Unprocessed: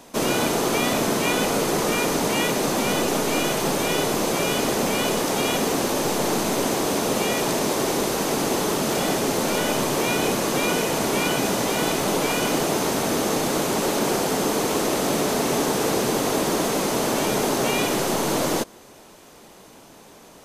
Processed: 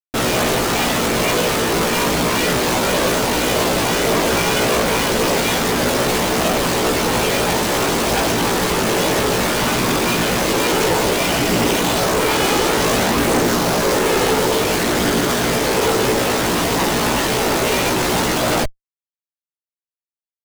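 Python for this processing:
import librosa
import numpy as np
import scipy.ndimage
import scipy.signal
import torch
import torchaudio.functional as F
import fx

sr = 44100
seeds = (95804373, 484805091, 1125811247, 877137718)

y = fx.schmitt(x, sr, flips_db=-31.0)
y = fx.chorus_voices(y, sr, voices=4, hz=0.29, base_ms=17, depth_ms=1.2, mix_pct=45)
y = F.gain(torch.from_numpy(y), 8.5).numpy()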